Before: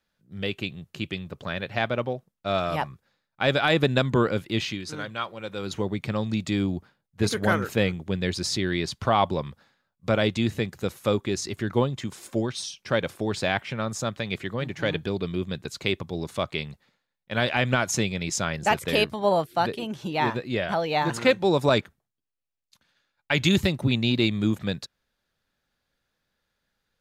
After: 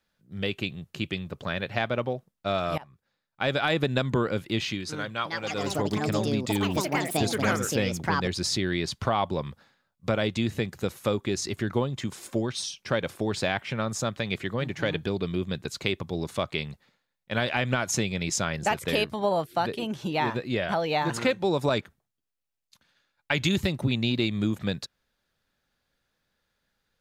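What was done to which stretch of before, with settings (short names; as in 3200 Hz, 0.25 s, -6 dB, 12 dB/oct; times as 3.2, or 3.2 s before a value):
2.78–3.68 fade in, from -23.5 dB
5.07–9.35 echoes that change speed 0.178 s, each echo +6 st, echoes 2
whole clip: compressor 2.5:1, threshold -24 dBFS; gain +1 dB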